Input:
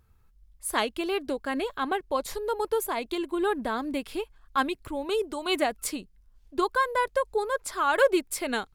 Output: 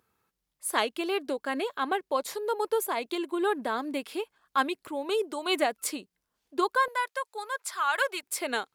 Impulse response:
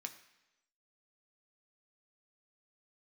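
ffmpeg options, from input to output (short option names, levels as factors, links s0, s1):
-af "asetnsamples=n=441:p=0,asendcmd='6.88 highpass f 1000;8.23 highpass f 340',highpass=270"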